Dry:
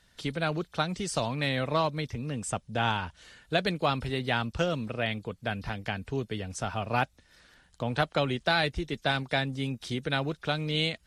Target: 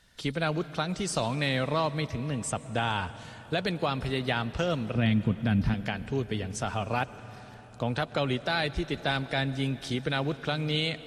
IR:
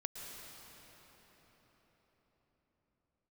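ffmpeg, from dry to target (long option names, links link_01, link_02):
-filter_complex "[0:a]asettb=1/sr,asplit=3[link_01][link_02][link_03];[link_01]atrim=end=4.954[link_04];[link_02]atrim=start=4.95:end=5.74,asetpts=PTS-STARTPTS,afade=type=in:duration=0.004:curve=qsin,afade=type=out:start_time=0.786:duration=0.004:curve=qsin,lowshelf=frequency=340:width_type=q:width=1.5:gain=10.5[link_05];[link_03]atrim=start=5.736[link_06];[link_04][link_05]acrossfade=duration=0.004:curve1=hsin:curve2=qsin[link_07];[link_07][link_06]acrossfade=duration=0.004:curve1=qsin:curve2=hsin,alimiter=limit=-18dB:level=0:latency=1:release=93,asplit=2[link_08][link_09];[1:a]atrim=start_sample=2205[link_10];[link_09][link_10]afir=irnorm=-1:irlink=0,volume=-9.5dB[link_11];[link_08][link_11]amix=inputs=2:normalize=0"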